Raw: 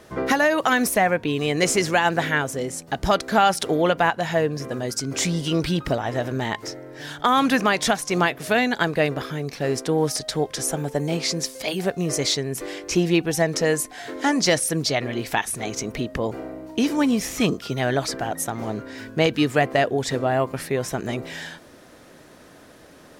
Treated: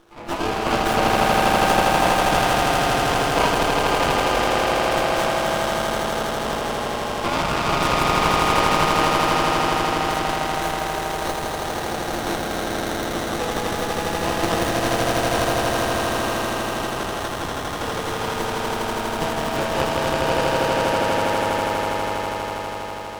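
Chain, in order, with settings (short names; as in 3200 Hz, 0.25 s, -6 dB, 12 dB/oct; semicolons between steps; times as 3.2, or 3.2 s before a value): HPF 970 Hz 12 dB/oct; ring modulator 170 Hz; on a send: swelling echo 81 ms, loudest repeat 8, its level -4 dB; on the sum: spring tank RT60 2.3 s, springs 32/36 ms, chirp 75 ms, DRR -1 dB; running maximum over 17 samples; gain +1.5 dB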